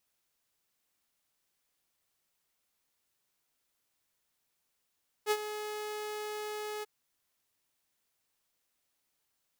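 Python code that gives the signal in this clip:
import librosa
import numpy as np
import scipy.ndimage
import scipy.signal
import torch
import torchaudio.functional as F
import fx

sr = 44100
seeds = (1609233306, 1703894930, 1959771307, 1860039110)

y = fx.adsr_tone(sr, wave='saw', hz=423.0, attack_ms=50.0, decay_ms=54.0, sustain_db=-12.0, held_s=1.57, release_ms=21.0, level_db=-22.0)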